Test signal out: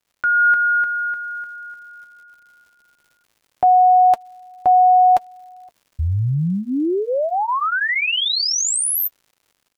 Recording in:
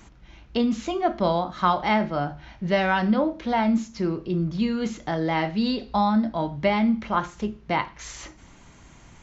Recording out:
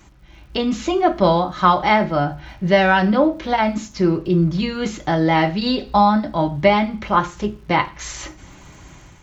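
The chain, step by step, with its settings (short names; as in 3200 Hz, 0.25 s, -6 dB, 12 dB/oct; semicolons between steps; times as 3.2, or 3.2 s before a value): notch comb 230 Hz; crackle 180/s -55 dBFS; AGC gain up to 7 dB; gain +2 dB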